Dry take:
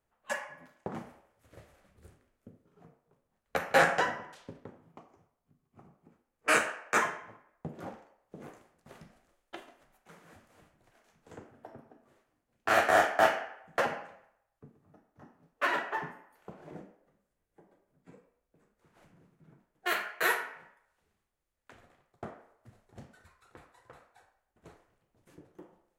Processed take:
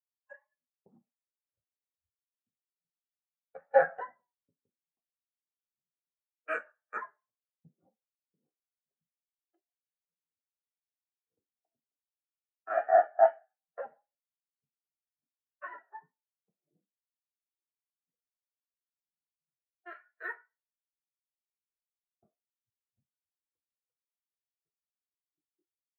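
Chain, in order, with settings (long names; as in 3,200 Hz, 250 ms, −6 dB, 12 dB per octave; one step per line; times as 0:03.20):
pitch vibrato 2.5 Hz 33 cents
every bin expanded away from the loudest bin 2.5 to 1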